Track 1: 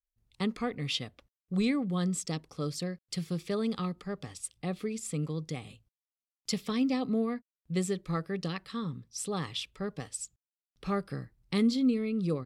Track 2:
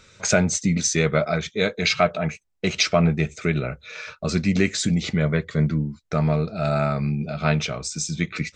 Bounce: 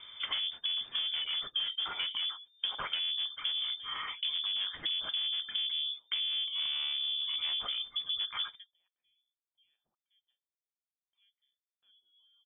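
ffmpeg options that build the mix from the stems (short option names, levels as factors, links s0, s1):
-filter_complex "[0:a]deesser=0.75,adelay=300,volume=0.133[s0];[1:a]lowshelf=f=390:g=11,asoftclip=type=tanh:threshold=0.1,volume=0.668,asplit=2[s1][s2];[s2]apad=whole_len=562284[s3];[s0][s3]sidechaingate=range=0.0447:threshold=0.00355:ratio=16:detection=peak[s4];[s4][s1]amix=inputs=2:normalize=0,equalizer=f=440:w=5.2:g=12,lowpass=f=3100:t=q:w=0.5098,lowpass=f=3100:t=q:w=0.6013,lowpass=f=3100:t=q:w=0.9,lowpass=f=3100:t=q:w=2.563,afreqshift=-3600,acompressor=threshold=0.0251:ratio=6"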